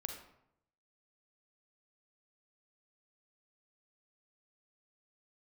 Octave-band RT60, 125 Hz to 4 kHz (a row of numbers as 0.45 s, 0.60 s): 1.0 s, 0.85 s, 0.80 s, 0.75 s, 0.60 s, 0.45 s